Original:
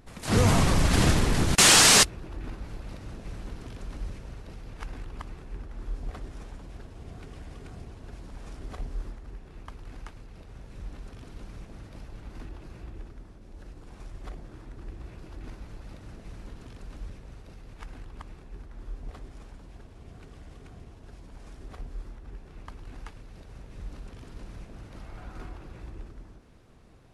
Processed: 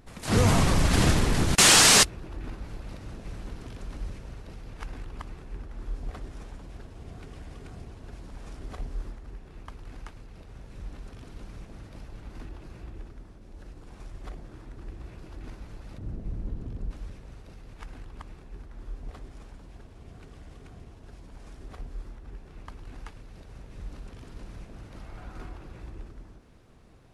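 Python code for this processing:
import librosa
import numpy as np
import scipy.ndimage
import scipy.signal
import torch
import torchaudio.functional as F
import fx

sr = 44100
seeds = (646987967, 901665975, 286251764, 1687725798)

y = fx.tilt_shelf(x, sr, db=9.5, hz=650.0, at=(15.98, 16.91))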